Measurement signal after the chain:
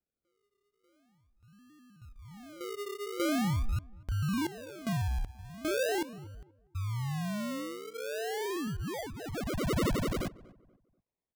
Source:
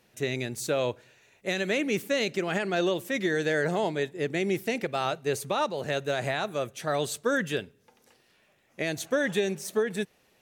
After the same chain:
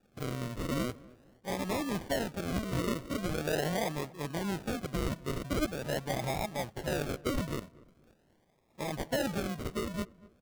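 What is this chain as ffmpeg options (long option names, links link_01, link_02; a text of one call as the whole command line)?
ffmpeg -i in.wav -filter_complex "[0:a]equalizer=frequency=400:width_type=o:width=0.67:gain=-11,equalizer=frequency=2500:width_type=o:width=0.67:gain=-10,equalizer=frequency=6300:width_type=o:width=0.67:gain=6,acrusher=samples=42:mix=1:aa=0.000001:lfo=1:lforange=25.2:lforate=0.43,asplit=2[link_01][link_02];[link_02]adelay=241,lowpass=frequency=1300:poles=1,volume=-20.5dB,asplit=2[link_03][link_04];[link_04]adelay=241,lowpass=frequency=1300:poles=1,volume=0.33,asplit=2[link_05][link_06];[link_06]adelay=241,lowpass=frequency=1300:poles=1,volume=0.33[link_07];[link_01][link_03][link_05][link_07]amix=inputs=4:normalize=0,volume=-1.5dB" out.wav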